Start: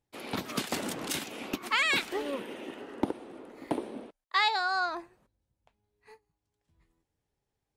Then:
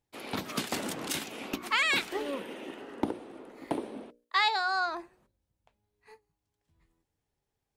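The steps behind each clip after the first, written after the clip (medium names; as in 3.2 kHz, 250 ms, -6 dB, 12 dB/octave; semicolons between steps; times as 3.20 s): hum notches 60/120/180/240/300/360/420/480/540/600 Hz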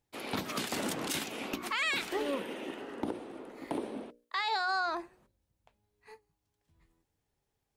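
peak limiter -24.5 dBFS, peak gain reduction 10.5 dB; trim +1.5 dB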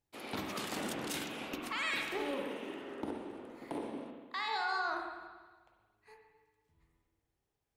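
reverberation RT60 1.5 s, pre-delay 45 ms, DRR 1.5 dB; trim -5.5 dB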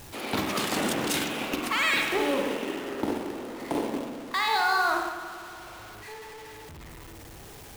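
jump at every zero crossing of -46 dBFS; in parallel at -10.5 dB: bit crusher 6-bit; on the sum: trim +7.5 dB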